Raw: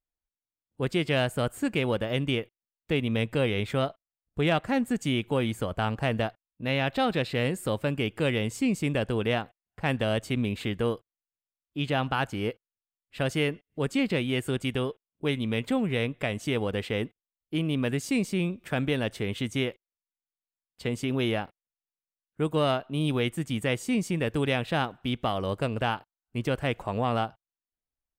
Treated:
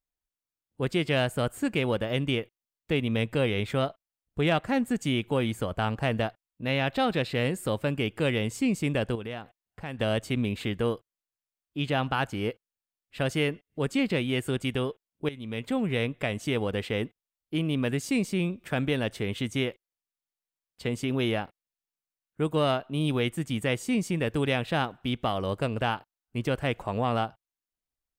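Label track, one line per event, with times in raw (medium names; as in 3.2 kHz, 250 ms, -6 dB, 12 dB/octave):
9.150000	9.990000	compression 2:1, threshold -39 dBFS
15.290000	15.870000	fade in, from -15.5 dB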